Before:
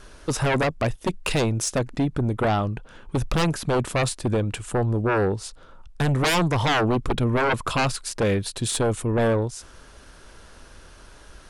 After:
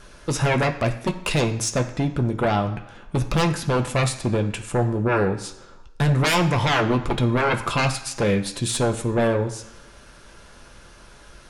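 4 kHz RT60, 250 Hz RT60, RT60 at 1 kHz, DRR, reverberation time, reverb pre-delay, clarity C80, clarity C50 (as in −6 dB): 1.0 s, 0.95 s, 1.0 s, 3.0 dB, 1.1 s, 3 ms, 14.0 dB, 12.0 dB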